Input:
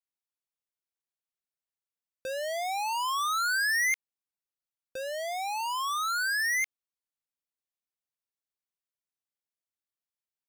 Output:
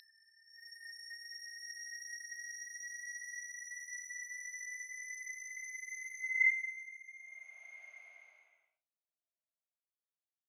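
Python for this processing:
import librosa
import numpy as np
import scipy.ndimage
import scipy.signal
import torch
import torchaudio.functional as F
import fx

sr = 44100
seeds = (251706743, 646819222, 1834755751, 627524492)

y = fx.paulstretch(x, sr, seeds[0], factor=39.0, window_s=0.05, from_s=6.44)
y = fx.filter_sweep_bandpass(y, sr, from_hz=4100.0, to_hz=660.0, start_s=6.12, end_s=6.99, q=6.9)
y = fx.noise_reduce_blind(y, sr, reduce_db=20)
y = y * librosa.db_to_amplitude(1.5)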